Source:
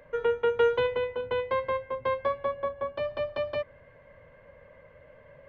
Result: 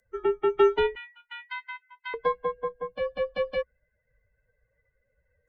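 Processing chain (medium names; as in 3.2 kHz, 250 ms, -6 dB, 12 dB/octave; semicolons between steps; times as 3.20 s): expander on every frequency bin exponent 2; 0.95–2.14 s: inverse Chebyshev high-pass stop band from 550 Hz, stop band 50 dB; frequency shift -69 Hz; trim +4.5 dB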